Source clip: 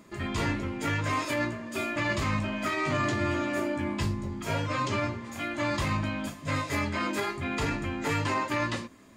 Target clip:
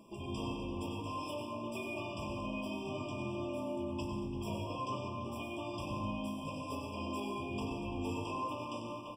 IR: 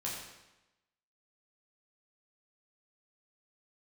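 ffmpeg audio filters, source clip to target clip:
-filter_complex "[0:a]asplit=2[link_01][link_02];[link_02]adelay=340,highpass=300,lowpass=3400,asoftclip=type=hard:threshold=-26dB,volume=-11dB[link_03];[link_01][link_03]amix=inputs=2:normalize=0,acompressor=threshold=-37dB:ratio=3,equalizer=frequency=64:width=0.35:gain=-4,bandreject=frequency=98.27:width_type=h:width=4,bandreject=frequency=196.54:width_type=h:width=4,bandreject=frequency=294.81:width_type=h:width=4,bandreject=frequency=393.08:width_type=h:width=4,flanger=delay=9.5:depth=2.9:regen=77:speed=0.66:shape=triangular,asplit=2[link_04][link_05];[1:a]atrim=start_sample=2205,lowshelf=frequency=480:gain=6,adelay=95[link_06];[link_05][link_06]afir=irnorm=-1:irlink=0,volume=-6dB[link_07];[link_04][link_07]amix=inputs=2:normalize=0,afftfilt=real='re*eq(mod(floor(b*sr/1024/1200),2),0)':imag='im*eq(mod(floor(b*sr/1024/1200),2),0)':win_size=1024:overlap=0.75,volume=2dB"

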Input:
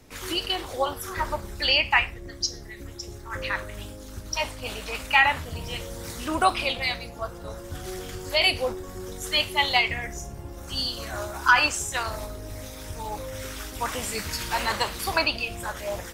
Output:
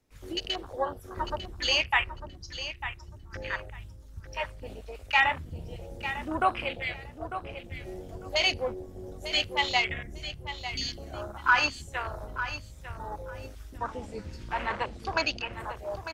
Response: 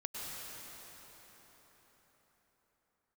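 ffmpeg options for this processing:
-filter_complex "[0:a]afwtdn=0.0355,asettb=1/sr,asplit=3[link_01][link_02][link_03];[link_01]atrim=end=13.784[link_04];[link_02]atrim=start=13.78:end=15.53,asetpts=PTS-STARTPTS,afade=type=in:duration=0.004:curve=qsin,afade=type=out:start_time=1.746:duration=0.004:curve=qsin,lowpass=6400[link_05];[link_03]atrim=start=15.526[link_06];[link_04][link_05]acrossfade=duration=0.004:curve1=hsin:curve2=qsin[link_07];[link_07][link_06]acrossfade=duration=0.004:curve1=qsin:curve2=hsin,aecho=1:1:899|1798|2697:0.282|0.0535|0.0102,volume=-4dB"

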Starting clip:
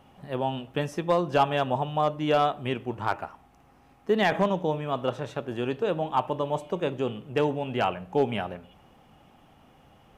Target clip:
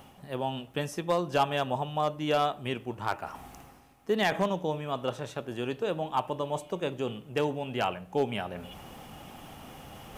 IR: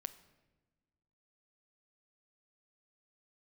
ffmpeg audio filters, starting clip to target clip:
-af "highshelf=frequency=4900:gain=11.5,areverse,acompressor=mode=upward:threshold=-29dB:ratio=2.5,areverse,volume=-4dB"

